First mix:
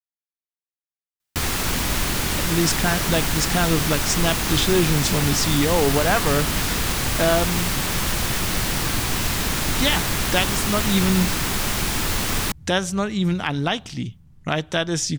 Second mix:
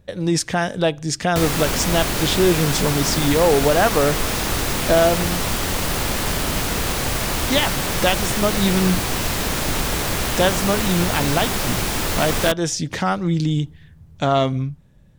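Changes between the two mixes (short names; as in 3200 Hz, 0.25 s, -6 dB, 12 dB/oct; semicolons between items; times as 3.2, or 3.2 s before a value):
speech: entry -2.30 s; master: add bell 550 Hz +6 dB 1.2 oct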